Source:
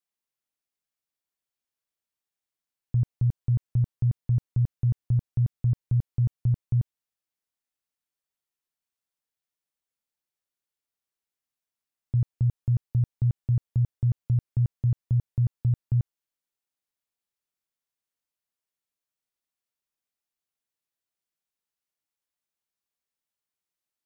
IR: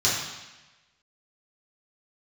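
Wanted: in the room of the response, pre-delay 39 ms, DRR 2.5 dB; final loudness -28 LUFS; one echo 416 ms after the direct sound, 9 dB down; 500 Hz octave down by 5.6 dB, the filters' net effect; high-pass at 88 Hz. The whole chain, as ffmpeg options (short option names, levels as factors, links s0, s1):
-filter_complex "[0:a]highpass=88,equalizer=f=500:t=o:g=-8,aecho=1:1:416:0.355,asplit=2[s0][s1];[1:a]atrim=start_sample=2205,adelay=39[s2];[s1][s2]afir=irnorm=-1:irlink=0,volume=0.15[s3];[s0][s3]amix=inputs=2:normalize=0,volume=0.75"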